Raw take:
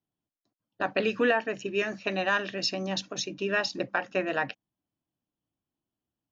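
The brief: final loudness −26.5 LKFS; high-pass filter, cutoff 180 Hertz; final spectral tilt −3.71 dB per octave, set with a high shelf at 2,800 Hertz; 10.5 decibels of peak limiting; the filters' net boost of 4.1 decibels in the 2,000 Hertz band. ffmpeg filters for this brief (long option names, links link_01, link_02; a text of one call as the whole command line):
ffmpeg -i in.wav -af "highpass=180,equalizer=frequency=2000:width_type=o:gain=8,highshelf=frequency=2800:gain=-7.5,volume=5.5dB,alimiter=limit=-15dB:level=0:latency=1" out.wav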